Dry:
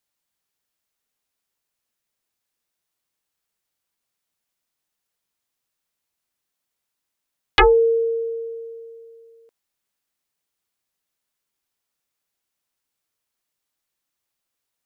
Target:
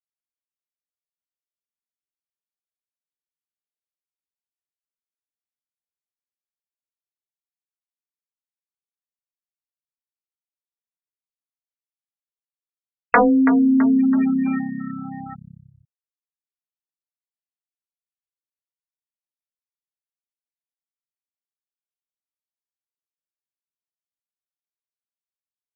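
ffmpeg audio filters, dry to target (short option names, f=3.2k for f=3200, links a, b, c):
-filter_complex "[0:a]acrusher=bits=5:mix=0:aa=0.000001,afftfilt=real='re*gte(hypot(re,im),0.0316)':imag='im*gte(hypot(re,im),0.0316)':win_size=1024:overlap=0.75,areverse,acompressor=mode=upward:threshold=-32dB:ratio=2.5,areverse,agate=range=-33dB:threshold=-26dB:ratio=3:detection=peak,acompressor=threshold=-20dB:ratio=16,lowpass=f=3.7k:w=0.5412,lowpass=f=3.7k:w=1.3066,asetrate=25442,aresample=44100,highpass=f=380:p=1,asplit=7[a][b][c][d][e][f][g];[b]adelay=330,afreqshift=-33,volume=-14dB[h];[c]adelay=660,afreqshift=-66,volume=-19.2dB[i];[d]adelay=990,afreqshift=-99,volume=-24.4dB[j];[e]adelay=1320,afreqshift=-132,volume=-29.6dB[k];[f]adelay=1650,afreqshift=-165,volume=-34.8dB[l];[g]adelay=1980,afreqshift=-198,volume=-40dB[m];[a][h][i][j][k][l][m]amix=inputs=7:normalize=0,afftfilt=real='re*gte(hypot(re,im),0.0158)':imag='im*gte(hypot(re,im),0.0158)':win_size=1024:overlap=0.75,alimiter=level_in=13dB:limit=-1dB:release=50:level=0:latency=1,volume=-1dB"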